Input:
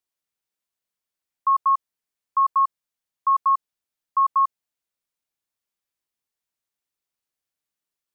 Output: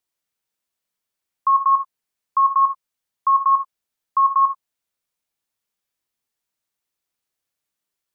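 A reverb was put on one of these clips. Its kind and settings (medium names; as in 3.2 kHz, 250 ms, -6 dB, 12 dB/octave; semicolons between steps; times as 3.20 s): gated-style reverb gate 100 ms flat, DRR 8.5 dB; trim +3.5 dB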